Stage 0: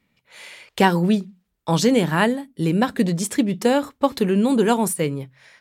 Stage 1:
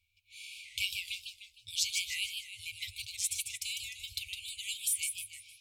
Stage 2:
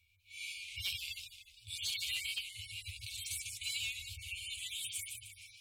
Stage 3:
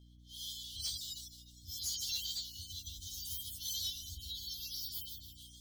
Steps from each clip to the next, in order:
FFT band-reject 110–2200 Hz; warbling echo 0.153 s, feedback 43%, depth 215 cents, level -5 dB; gain -4.5 dB
median-filter separation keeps harmonic; in parallel at -6 dB: bit-crush 6-bit; on the sum: soft clip -34.5 dBFS, distortion -13 dB; gain +7 dB
inharmonic rescaling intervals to 115%; hum 60 Hz, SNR 16 dB; gain +4 dB

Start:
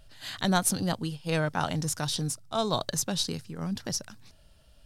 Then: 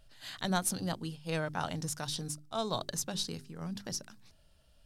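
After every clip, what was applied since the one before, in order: notches 50/100/150/200/250/300/350/400 Hz; gain -6 dB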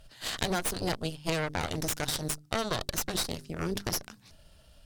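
added harmonics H 4 -9 dB, 8 -12 dB, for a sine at -17.5 dBFS; compressor 5:1, threshold -36 dBFS, peak gain reduction 13 dB; gain +8.5 dB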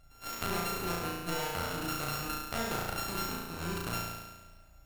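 sample sorter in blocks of 32 samples; on a send: flutter echo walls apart 6 m, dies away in 1.2 s; on the sum: gain -6.5 dB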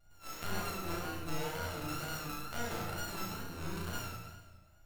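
wow and flutter 72 cents; shoebox room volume 96 m³, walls mixed, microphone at 0.79 m; gain -8 dB

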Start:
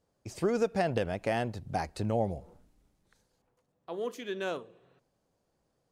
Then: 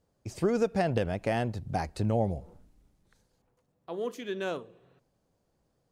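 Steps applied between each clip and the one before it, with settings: low shelf 240 Hz +5.5 dB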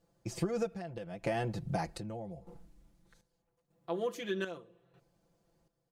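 comb 5.9 ms, depth 83%; compressor 10:1, threshold -28 dBFS, peak gain reduction 11 dB; chopper 0.81 Hz, depth 65%, duty 60%; gain -1 dB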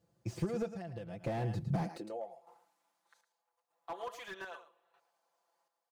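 echo 0.11 s -12.5 dB; high-pass sweep 88 Hz -> 890 Hz, 1.61–2.35; slew limiter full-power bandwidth 19 Hz; gain -3 dB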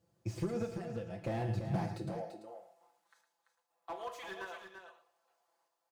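on a send: echo 0.339 s -8 dB; on the sum: non-linear reverb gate 0.15 s falling, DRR 6 dB; gain -1 dB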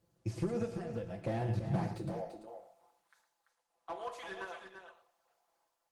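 gain +1.5 dB; Opus 20 kbps 48000 Hz

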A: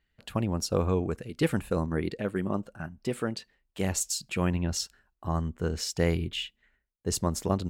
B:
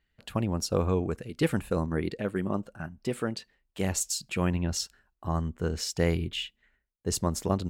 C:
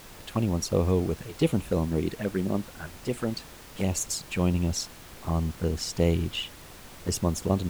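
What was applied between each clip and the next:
nothing audible
envelope flanger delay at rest 9.7 ms, full sweep at -25 dBFS; added noise pink -49 dBFS; gain +3 dB

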